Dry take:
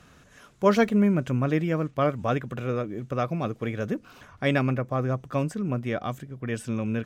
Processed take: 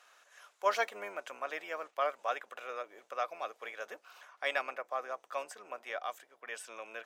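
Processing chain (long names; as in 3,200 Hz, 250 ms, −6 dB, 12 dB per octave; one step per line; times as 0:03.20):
sub-octave generator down 1 octave, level −3 dB
high-pass filter 630 Hz 24 dB per octave
level −4.5 dB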